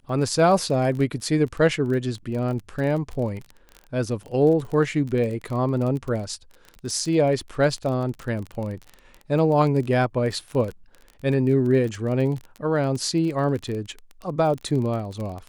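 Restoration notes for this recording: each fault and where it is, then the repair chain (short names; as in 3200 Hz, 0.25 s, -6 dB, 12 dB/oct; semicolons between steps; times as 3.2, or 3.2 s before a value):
crackle 23/s -29 dBFS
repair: de-click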